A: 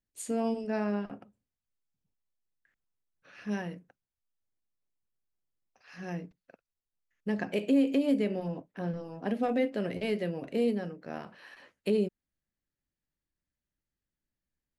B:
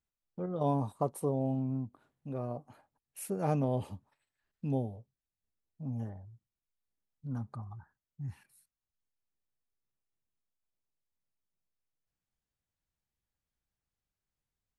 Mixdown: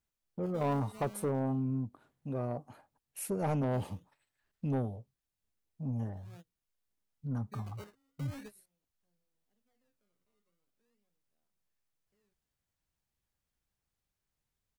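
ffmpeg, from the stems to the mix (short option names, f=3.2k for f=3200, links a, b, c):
-filter_complex "[0:a]acrusher=samples=18:mix=1:aa=0.000001:lfo=1:lforange=18:lforate=0.42,asoftclip=type=hard:threshold=-25dB,adelay=250,volume=-18dB[a];[1:a]volume=3dB,asplit=2[b][c];[c]apad=whole_len=663206[d];[a][d]sidechaingate=range=-33dB:threshold=-57dB:ratio=16:detection=peak[e];[e][b]amix=inputs=2:normalize=0,asoftclip=type=tanh:threshold=-26dB"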